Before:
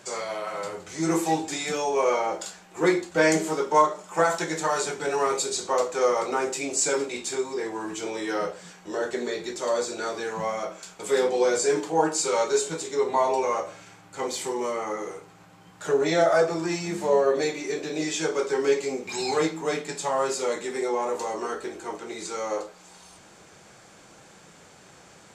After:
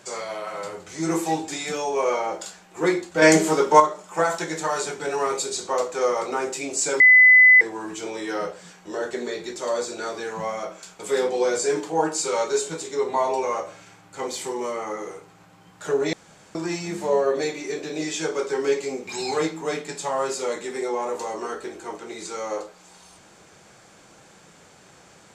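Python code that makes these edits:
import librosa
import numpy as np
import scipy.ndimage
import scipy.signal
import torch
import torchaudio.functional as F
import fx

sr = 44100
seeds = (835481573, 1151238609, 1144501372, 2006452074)

y = fx.edit(x, sr, fx.clip_gain(start_s=3.22, length_s=0.58, db=6.5),
    fx.bleep(start_s=7.0, length_s=0.61, hz=2010.0, db=-8.5),
    fx.room_tone_fill(start_s=16.13, length_s=0.42), tone=tone)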